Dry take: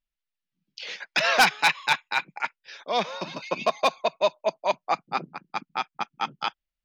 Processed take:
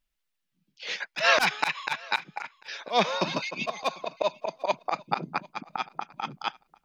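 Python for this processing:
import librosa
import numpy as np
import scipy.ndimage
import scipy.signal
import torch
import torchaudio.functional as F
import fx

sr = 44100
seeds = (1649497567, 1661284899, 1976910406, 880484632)

y = fx.auto_swell(x, sr, attack_ms=143.0)
y = fx.rider(y, sr, range_db=5, speed_s=2.0)
y = fx.echo_feedback(y, sr, ms=745, feedback_pct=16, wet_db=-24.0)
y = y * 10.0 ** (3.5 / 20.0)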